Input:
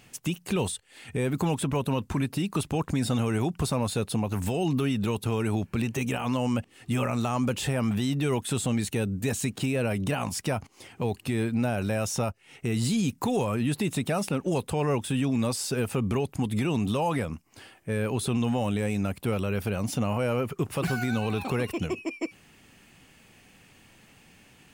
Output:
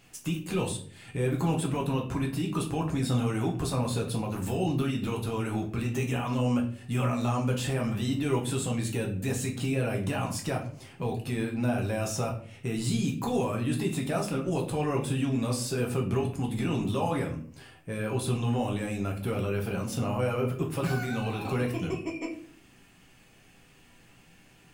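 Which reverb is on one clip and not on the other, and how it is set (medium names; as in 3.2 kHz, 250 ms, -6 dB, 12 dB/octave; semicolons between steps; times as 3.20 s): simulated room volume 49 m³, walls mixed, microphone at 0.66 m; trim -5.5 dB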